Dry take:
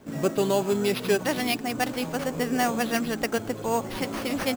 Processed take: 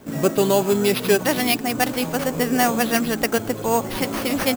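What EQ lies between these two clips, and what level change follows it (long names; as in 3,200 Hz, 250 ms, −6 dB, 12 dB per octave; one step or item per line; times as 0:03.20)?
high-shelf EQ 10,000 Hz +5.5 dB
parametric band 14,000 Hz +2.5 dB 0.62 octaves
+5.5 dB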